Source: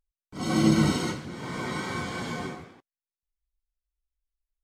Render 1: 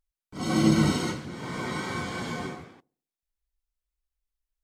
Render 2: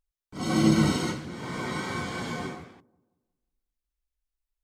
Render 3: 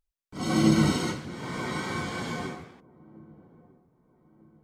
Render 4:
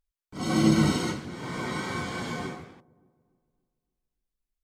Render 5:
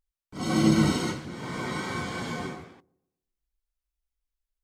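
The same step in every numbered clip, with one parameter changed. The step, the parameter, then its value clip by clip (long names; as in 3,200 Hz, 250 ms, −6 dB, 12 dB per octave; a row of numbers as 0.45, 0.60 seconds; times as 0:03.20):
delay with a low-pass on its return, delay time: 66, 180, 1,249, 287, 120 milliseconds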